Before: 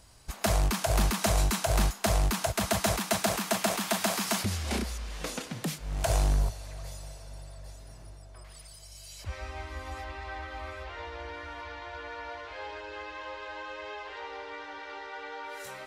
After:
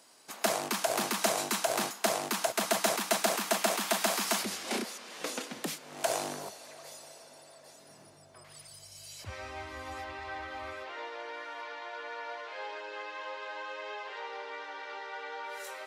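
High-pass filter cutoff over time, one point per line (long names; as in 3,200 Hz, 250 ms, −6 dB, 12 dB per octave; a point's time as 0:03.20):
high-pass filter 24 dB per octave
0:07.57 240 Hz
0:08.77 97 Hz
0:10.68 97 Hz
0:11.14 370 Hz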